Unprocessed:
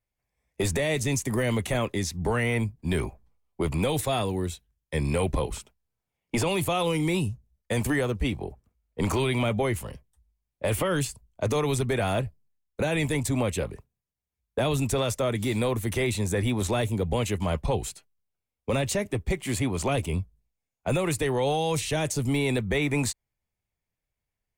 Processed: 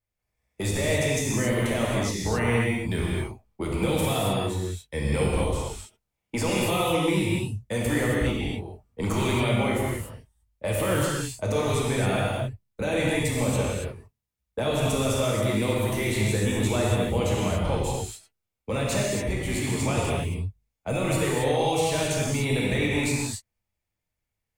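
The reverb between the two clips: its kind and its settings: gated-style reverb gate 300 ms flat, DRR -5 dB; trim -4 dB

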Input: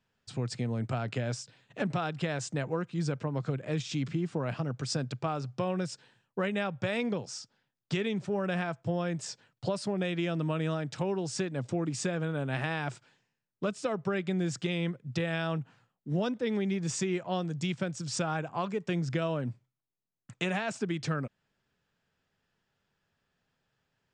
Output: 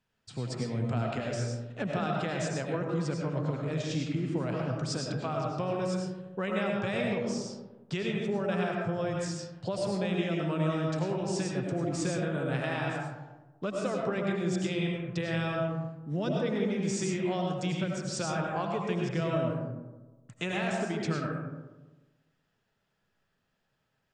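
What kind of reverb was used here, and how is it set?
algorithmic reverb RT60 1.2 s, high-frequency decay 0.35×, pre-delay 60 ms, DRR -1 dB; trim -2.5 dB

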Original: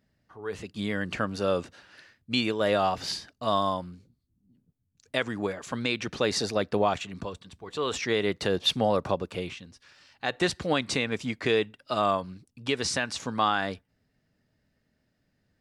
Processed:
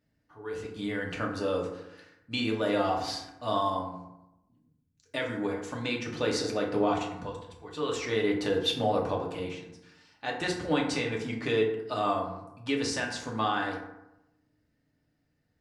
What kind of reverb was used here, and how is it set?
FDN reverb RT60 0.91 s, low-frequency decay 1.1×, high-frequency decay 0.45×, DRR -1.5 dB; trim -6.5 dB

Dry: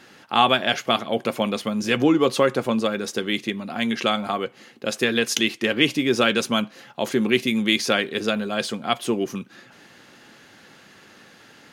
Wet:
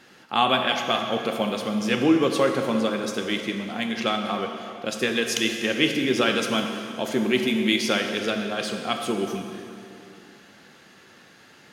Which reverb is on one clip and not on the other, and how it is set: plate-style reverb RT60 2.7 s, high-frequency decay 0.85×, DRR 3.5 dB; trim -3.5 dB

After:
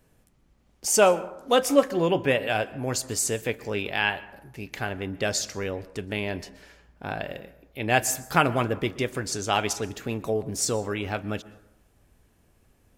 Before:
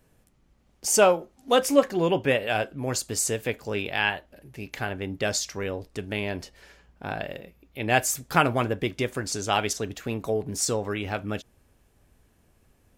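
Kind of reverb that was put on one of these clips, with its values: plate-style reverb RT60 0.86 s, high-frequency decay 0.4×, pre-delay 110 ms, DRR 17.5 dB

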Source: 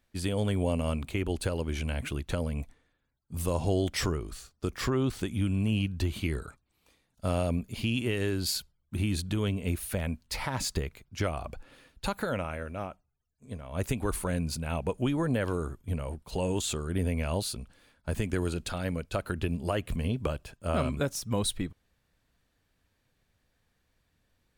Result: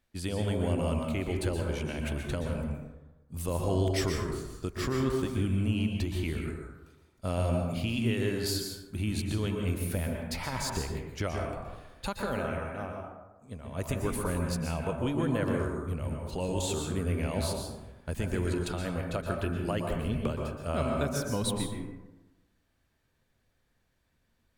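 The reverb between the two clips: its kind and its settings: plate-style reverb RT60 1.1 s, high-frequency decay 0.4×, pre-delay 110 ms, DRR 1 dB; trim -3 dB

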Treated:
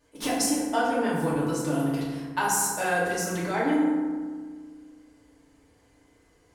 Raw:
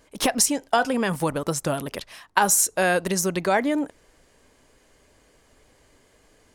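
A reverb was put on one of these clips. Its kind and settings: FDN reverb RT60 1.6 s, low-frequency decay 1.45×, high-frequency decay 0.45×, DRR -9.5 dB; trim -14 dB

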